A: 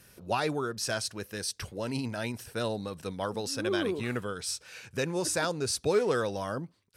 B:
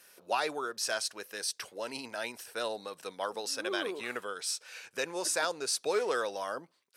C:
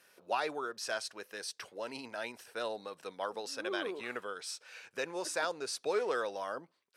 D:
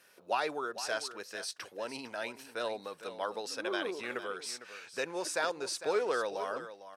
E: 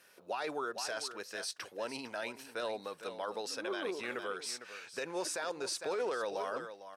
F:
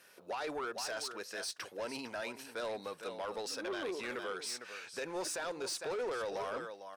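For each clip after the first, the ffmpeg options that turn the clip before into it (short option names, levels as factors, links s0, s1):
-af "highpass=510"
-af "highshelf=f=5400:g=-10,volume=0.794"
-af "aecho=1:1:454:0.237,volume=1.19"
-af "alimiter=level_in=1.5:limit=0.0631:level=0:latency=1:release=15,volume=0.668"
-af "asoftclip=type=tanh:threshold=0.02,volume=1.19"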